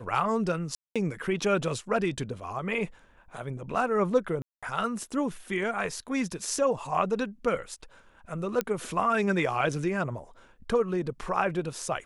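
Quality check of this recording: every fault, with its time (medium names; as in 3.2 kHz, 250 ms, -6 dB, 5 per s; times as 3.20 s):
0.75–0.96 s: dropout 206 ms
4.42–4.63 s: dropout 206 ms
8.61 s: pop -12 dBFS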